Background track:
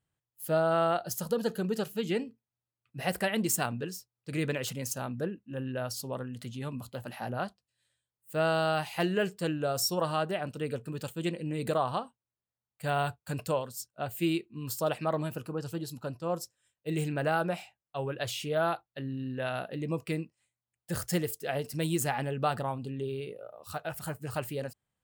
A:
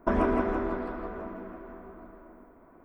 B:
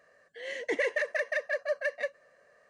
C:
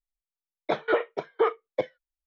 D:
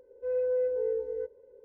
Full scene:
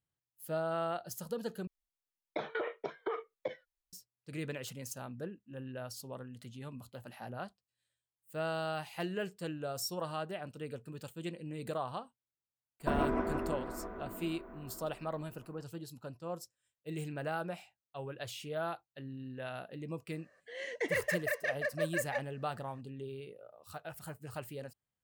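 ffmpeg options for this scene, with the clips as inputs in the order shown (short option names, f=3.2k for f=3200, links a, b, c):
-filter_complex "[0:a]volume=-8.5dB[a];[3:a]acompressor=threshold=-34dB:ratio=5:attack=9.2:release=73:knee=1:detection=peak[b];[a]asplit=2[c][d];[c]atrim=end=1.674[e];[b]atrim=end=2.26,asetpts=PTS-STARTPTS,volume=-1.5dB[f];[d]atrim=start=3.926[g];[1:a]atrim=end=2.84,asetpts=PTS-STARTPTS,volume=-6.5dB,afade=t=in:d=0.004:c=hsin,afade=t=out:st=2.836:d=0.004:c=hsin,adelay=12800[h];[2:a]atrim=end=2.69,asetpts=PTS-STARTPTS,volume=-4dB,afade=t=in:d=0.004:c=hsin,afade=t=out:st=2.686:d=0.004:c=hsin,adelay=20120[i];[e][f]acrossfade=d=0.004:c1=hsin:c2=hsin[j];[j][g]acrossfade=d=0.004:c1=hsin:c2=hsin[k];[k][h][i]amix=inputs=3:normalize=0"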